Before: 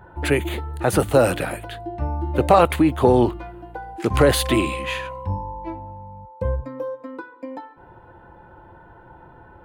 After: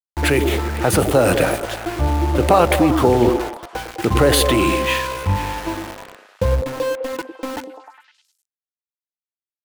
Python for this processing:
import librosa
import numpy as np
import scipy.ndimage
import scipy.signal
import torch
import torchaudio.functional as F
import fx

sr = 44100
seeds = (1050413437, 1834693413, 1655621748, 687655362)

p1 = fx.over_compress(x, sr, threshold_db=-22.0, ratio=-0.5)
p2 = x + (p1 * 10.0 ** (-2.0 / 20.0))
p3 = np.where(np.abs(p2) >= 10.0 ** (-24.5 / 20.0), p2, 0.0)
y = fx.echo_stepped(p3, sr, ms=102, hz=330.0, octaves=0.7, feedback_pct=70, wet_db=-4)